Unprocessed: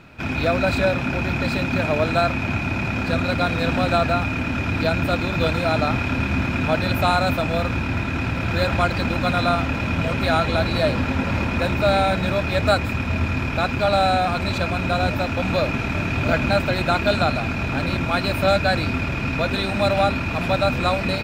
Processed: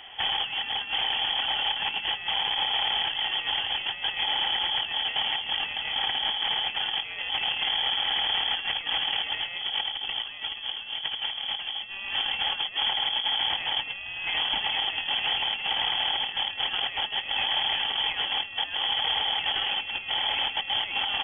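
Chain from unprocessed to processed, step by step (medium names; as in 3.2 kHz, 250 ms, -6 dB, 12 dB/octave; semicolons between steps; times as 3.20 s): tracing distortion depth 0.23 ms; 9.56–11.89 s: bass shelf 380 Hz +4.5 dB; compressor with a negative ratio -24 dBFS, ratio -0.5; peak limiter -15.5 dBFS, peak gain reduction 7 dB; frequency inversion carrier 3.3 kHz; trim -3 dB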